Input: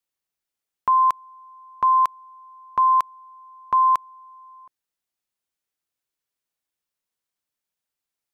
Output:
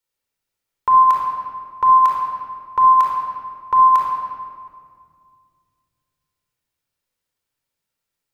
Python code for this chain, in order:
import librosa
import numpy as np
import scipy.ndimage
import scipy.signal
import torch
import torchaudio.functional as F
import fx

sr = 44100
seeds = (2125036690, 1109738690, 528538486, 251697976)

y = fx.room_shoebox(x, sr, seeds[0], volume_m3=3900.0, walls='mixed', distance_m=4.5)